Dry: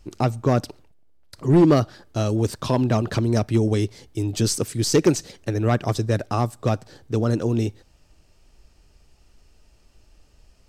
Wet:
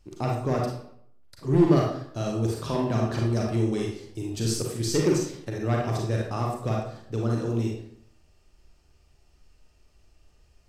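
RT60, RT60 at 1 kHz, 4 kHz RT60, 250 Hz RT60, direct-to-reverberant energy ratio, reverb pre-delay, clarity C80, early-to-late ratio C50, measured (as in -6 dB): 0.65 s, 0.65 s, 0.45 s, 0.70 s, -2.0 dB, 33 ms, 6.0 dB, 1.5 dB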